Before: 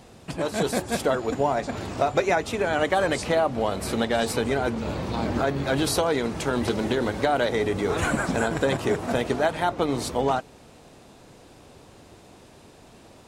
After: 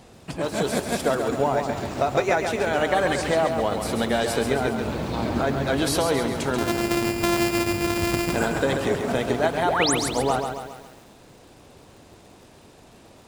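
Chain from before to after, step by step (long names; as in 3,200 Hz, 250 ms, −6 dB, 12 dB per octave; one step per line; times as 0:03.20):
0:06.58–0:08.33: samples sorted by size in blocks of 128 samples
0:09.65–0:09.95: sound drawn into the spectrogram rise 280–12,000 Hz −24 dBFS
feedback echo at a low word length 136 ms, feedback 55%, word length 8 bits, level −6 dB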